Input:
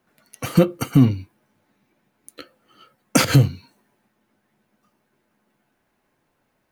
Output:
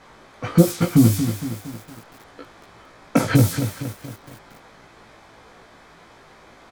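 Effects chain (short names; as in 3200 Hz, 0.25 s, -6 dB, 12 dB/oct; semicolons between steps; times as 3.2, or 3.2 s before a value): treble ducked by the level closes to 790 Hz, closed at -13 dBFS; added noise white -38 dBFS; low-pass opened by the level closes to 1000 Hz, open at -12 dBFS; high shelf 3300 Hz +11 dB; notch 2800 Hz, Q 9.3; doubler 18 ms -3.5 dB; lo-fi delay 0.231 s, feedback 55%, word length 6-bit, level -9 dB; gain -1 dB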